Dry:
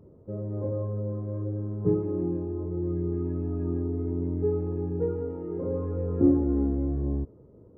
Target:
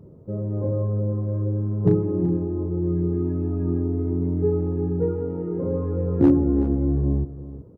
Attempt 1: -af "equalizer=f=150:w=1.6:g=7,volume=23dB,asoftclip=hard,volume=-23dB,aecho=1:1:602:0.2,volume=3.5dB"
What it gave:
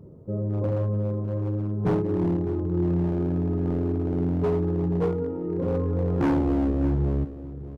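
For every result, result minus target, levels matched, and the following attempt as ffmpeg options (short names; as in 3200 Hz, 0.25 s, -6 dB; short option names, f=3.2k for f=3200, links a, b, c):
echo 0.227 s late; overloaded stage: distortion +18 dB
-af "equalizer=f=150:w=1.6:g=7,volume=23dB,asoftclip=hard,volume=-23dB,aecho=1:1:375:0.2,volume=3.5dB"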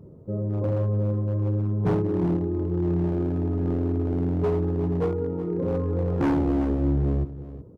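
overloaded stage: distortion +18 dB
-af "equalizer=f=150:w=1.6:g=7,volume=12dB,asoftclip=hard,volume=-12dB,aecho=1:1:375:0.2,volume=3.5dB"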